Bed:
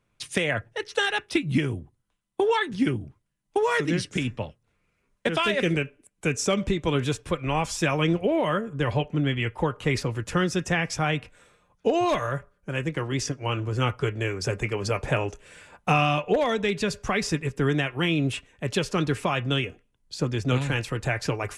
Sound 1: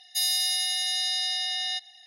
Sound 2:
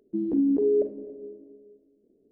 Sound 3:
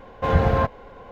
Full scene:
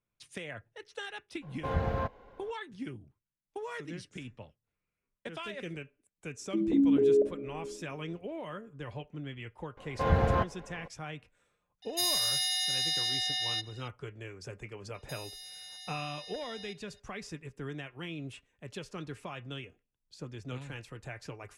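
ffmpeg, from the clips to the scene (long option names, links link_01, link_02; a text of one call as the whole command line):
ffmpeg -i bed.wav -i cue0.wav -i cue1.wav -i cue2.wav -filter_complex "[3:a]asplit=2[link_01][link_02];[1:a]asplit=2[link_03][link_04];[0:a]volume=-16.5dB[link_05];[link_03]asoftclip=type=tanh:threshold=-18.5dB[link_06];[link_04]acompressor=threshold=-31dB:ratio=6:attack=3.2:release=140:knee=1:detection=peak[link_07];[link_01]atrim=end=1.11,asetpts=PTS-STARTPTS,volume=-12dB,afade=type=in:duration=0.02,afade=type=out:start_time=1.09:duration=0.02,adelay=1410[link_08];[2:a]atrim=end=2.31,asetpts=PTS-STARTPTS,volume=-1.5dB,afade=type=in:duration=0.004:curve=hsin,afade=type=out:start_time=2.306:duration=0.004:curve=hsin,adelay=6400[link_09];[link_02]atrim=end=1.11,asetpts=PTS-STARTPTS,volume=-7dB,afade=type=in:duration=0.004:curve=hsin,afade=type=out:start_time=1.106:duration=0.004:curve=hsin,adelay=9770[link_10];[link_06]atrim=end=2.06,asetpts=PTS-STARTPTS,volume=-2.5dB,afade=type=in:duration=0.004:curve=hsin,afade=type=out:start_time=2.056:duration=0.004:curve=hsin,adelay=11820[link_11];[link_07]atrim=end=2.06,asetpts=PTS-STARTPTS,volume=-13dB,afade=type=in:duration=0.004:curve=hsin,afade=type=out:start_time=2.056:duration=0.004:curve=hsin,adelay=14940[link_12];[link_05][link_08][link_09][link_10][link_11][link_12]amix=inputs=6:normalize=0" out.wav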